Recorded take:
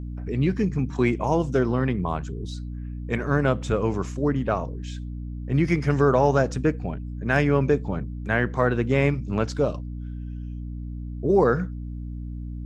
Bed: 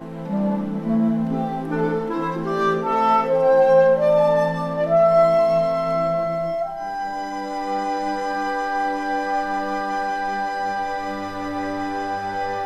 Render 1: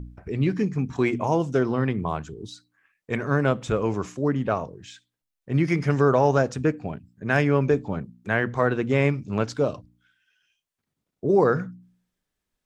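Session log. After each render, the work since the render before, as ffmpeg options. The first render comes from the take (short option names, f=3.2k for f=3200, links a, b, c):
-af "bandreject=f=60:t=h:w=4,bandreject=f=120:t=h:w=4,bandreject=f=180:t=h:w=4,bandreject=f=240:t=h:w=4,bandreject=f=300:t=h:w=4"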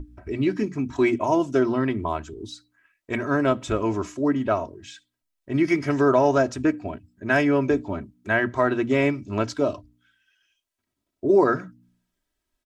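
-af "bandreject=f=60:t=h:w=6,bandreject=f=120:t=h:w=6,bandreject=f=180:t=h:w=6,bandreject=f=240:t=h:w=6,aecho=1:1:3.1:0.69"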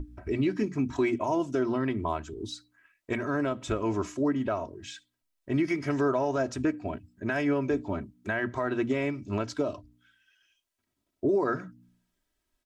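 -af "alimiter=limit=-18dB:level=0:latency=1:release=314"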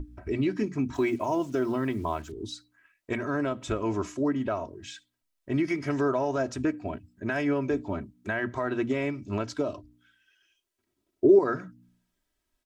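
-filter_complex "[0:a]asettb=1/sr,asplit=3[a][b][c];[a]atrim=end=0.944[d];[b]atrim=start=0.94:end=2.32,asetpts=PTS-STARTPTS,afade=t=in:d=0.004:c=qsin,afade=t=out:st=1.376:d=0.004:c=qsin,acrusher=bits=8:mix=0:aa=0.5[e];[c]atrim=start=2.316[f];[d][e]acrossfade=d=0.004:c1=hsin:c2=qsin[g];[g][f]acrossfade=d=0.004:c1=qsin:c2=hsin,asettb=1/sr,asplit=3[h][i][j];[h]atrim=end=9.754[k];[i]atrim=start=9.75:end=11.39,asetpts=PTS-STARTPTS,afade=t=in:d=0.004:c=qsin,afade=t=out:st=1.636:d=0.004:c=qsin,equalizer=f=370:w=3.1:g=10[l];[j]atrim=start=11.386[m];[k][l]acrossfade=d=0.004:c1=hsin:c2=qsin[n];[n][m]acrossfade=d=0.004:c1=qsin:c2=hsin"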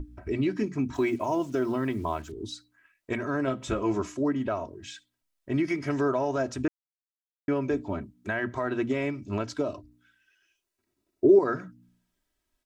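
-filter_complex "[0:a]asettb=1/sr,asplit=3[a][b][c];[a]atrim=end=3.464[d];[b]atrim=start=3.46:end=4,asetpts=PTS-STARTPTS,afade=t=in:d=0.004:c=qsin,afade=t=out:st=0.536:d=0.004:c=qsin,asplit=2[e][f];[f]adelay=15,volume=-5dB[g];[e][g]amix=inputs=2:normalize=0,atrim=end_sample=23814[h];[c]atrim=start=3.996[i];[d][h]acrossfade=d=0.004:c1=hsin:c2=qsin[j];[j][i]acrossfade=d=0.004:c1=qsin:c2=hsin,asettb=1/sr,asplit=3[k][l][m];[k]atrim=end=9.674[n];[l]atrim=start=9.67:end=11.29,asetpts=PTS-STARTPTS,afade=t=in:d=0.004:c=qsin,afade=t=out:st=1.616:d=0.004:c=qsin,bandreject=f=3.2k:w=12[o];[m]atrim=start=11.286[p];[n][o]acrossfade=d=0.004:c1=hsin:c2=qsin[q];[q][p]acrossfade=d=0.004:c1=qsin:c2=hsin,asplit=3[r][s][t];[r]atrim=end=6.68,asetpts=PTS-STARTPTS,afade=t=out:st=6.676:d=0.004:c=hsin[u];[s]atrim=start=6.68:end=7.48,asetpts=PTS-STARTPTS,volume=0[v];[t]atrim=start=7.48,asetpts=PTS-STARTPTS,afade=t=in:d=0.004:c=hsin[w];[u][v][w]concat=n=3:v=0:a=1"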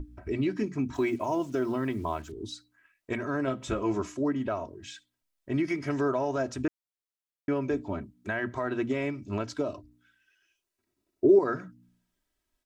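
-af "volume=-1.5dB"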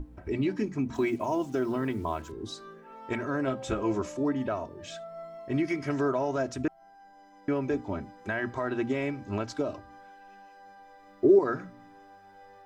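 -filter_complex "[1:a]volume=-27.5dB[a];[0:a][a]amix=inputs=2:normalize=0"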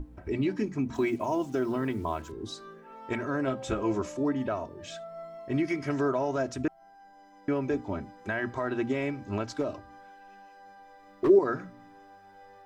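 -filter_complex "[0:a]asplit=3[a][b][c];[a]afade=t=out:st=9.53:d=0.02[d];[b]asoftclip=type=hard:threshold=-22dB,afade=t=in:st=9.53:d=0.02,afade=t=out:st=11.28:d=0.02[e];[c]afade=t=in:st=11.28:d=0.02[f];[d][e][f]amix=inputs=3:normalize=0"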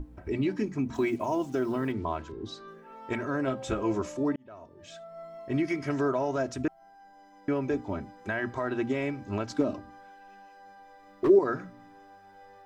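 -filter_complex "[0:a]asettb=1/sr,asplit=3[a][b][c];[a]atrim=end=1.924[d];[b]atrim=start=1.92:end=2.68,asetpts=PTS-STARTPTS,afade=t=in:d=0.004:c=qsin,afade=t=out:st=0.756:d=0.004:c=qsin,lowpass=4.7k[e];[c]atrim=start=2.676[f];[d][e]acrossfade=d=0.004:c1=hsin:c2=qsin[g];[g][f]acrossfade=d=0.004:c1=qsin:c2=hsin,asettb=1/sr,asplit=3[h][i][j];[h]atrim=end=9.504[k];[i]atrim=start=9.5:end=9.9,asetpts=PTS-STARTPTS,afade=t=in:d=0.004:c=qsin,afade=t=out:st=0.396:d=0.004:c=qsin,equalizer=f=230:w=1.5:g=10[l];[j]atrim=start=9.896[m];[k][l]acrossfade=d=0.004:c1=hsin:c2=qsin[n];[n][m]acrossfade=d=0.004:c1=qsin:c2=hsin,asplit=2[o][p];[o]atrim=end=4.36,asetpts=PTS-STARTPTS,afade=t=out:st=4.356:d=0.004:c=hsin[q];[p]atrim=start=4.36,asetpts=PTS-STARTPTS,afade=t=in:d=1.04[r];[q][r]concat=n=2:v=0:a=1"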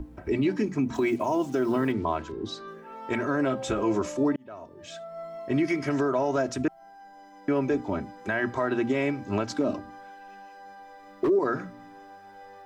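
-filter_complex "[0:a]acrossover=split=140[a][b];[b]acontrast=31[c];[a][c]amix=inputs=2:normalize=0,alimiter=limit=-16.5dB:level=0:latency=1:release=60"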